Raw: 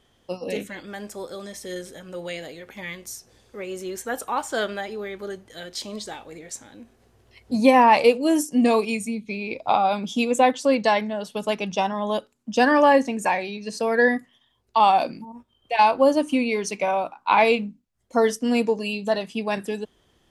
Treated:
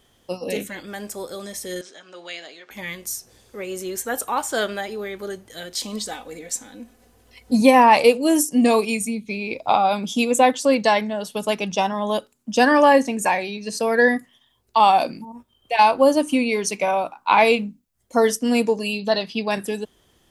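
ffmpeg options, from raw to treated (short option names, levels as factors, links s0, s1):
-filter_complex "[0:a]asettb=1/sr,asplit=3[s0][s1][s2];[s0]atrim=end=1.814[s3];[s1]atrim=start=1.81:end=2.71,asetpts=PTS-STARTPTS,afade=t=in:d=0.004:c=qsin,afade=t=out:st=0.896:d=0.004:c=qsin,highpass=490,equalizer=f=510:t=q:w=4:g=-9,equalizer=f=860:t=q:w=4:g=-4,equalizer=f=2000:t=q:w=4:g=-3,lowpass=f=6000:w=0.5412,lowpass=f=6000:w=1.3066[s4];[s2]atrim=start=2.706[s5];[s3][s4]acrossfade=d=0.004:c1=hsin:c2=qsin[s6];[s6][s5]acrossfade=d=0.004:c1=qsin:c2=hsin,asettb=1/sr,asplit=3[s7][s8][s9];[s7]atrim=end=5.824[s10];[s8]atrim=start=5.82:end=7.62,asetpts=PTS-STARTPTS,afade=t=in:d=0.004:c=qsin,afade=t=out:st=1.796:d=0.004:c=qsin,aecho=1:1:4:0.61,atrim=end_sample=79380[s11];[s9]atrim=start=7.616[s12];[s10][s11]acrossfade=d=0.004:c1=hsin:c2=qsin[s13];[s13][s12]acrossfade=d=0.004:c1=qsin:c2=hsin,asettb=1/sr,asplit=3[s14][s15][s16];[s14]atrim=end=18.994[s17];[s15]atrim=start=18.99:end=19.51,asetpts=PTS-STARTPTS,afade=t=in:d=0.004:c=qsin,afade=t=out:st=0.516:d=0.004:c=qsin,highshelf=f=6000:t=q:w=3:g=-9.5[s18];[s16]atrim=start=19.506[s19];[s17][s18]acrossfade=d=0.004:c1=hsin:c2=qsin[s20];[s20][s19]acrossfade=d=0.004:c1=qsin:c2=hsin,highshelf=f=8300:g=11.5,volume=1.26"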